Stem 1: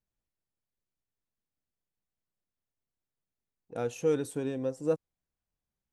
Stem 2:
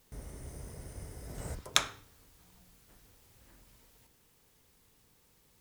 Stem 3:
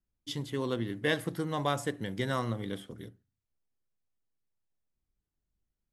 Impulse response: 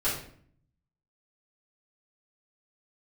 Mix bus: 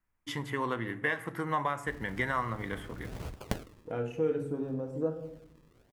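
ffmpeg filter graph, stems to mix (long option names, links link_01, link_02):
-filter_complex "[0:a]afwtdn=0.00447,adelay=150,volume=-0.5dB,asplit=2[link_01][link_02];[link_02]volume=-10dB[link_03];[1:a]acrusher=samples=41:mix=1:aa=0.000001:lfo=1:lforange=41:lforate=1.1,adelay=1750,volume=1dB[link_04];[2:a]equalizer=frequency=1000:width_type=o:width=1:gain=11,equalizer=frequency=2000:width_type=o:width=1:gain=12,equalizer=frequency=4000:width_type=o:width=1:gain=-8,alimiter=limit=-14dB:level=0:latency=1:release=482,volume=1dB,asplit=2[link_05][link_06];[link_06]volume=-21.5dB[link_07];[3:a]atrim=start_sample=2205[link_08];[link_03][link_07]amix=inputs=2:normalize=0[link_09];[link_09][link_08]afir=irnorm=-1:irlink=0[link_10];[link_01][link_04][link_05][link_10]amix=inputs=4:normalize=0,acompressor=threshold=-37dB:ratio=1.5"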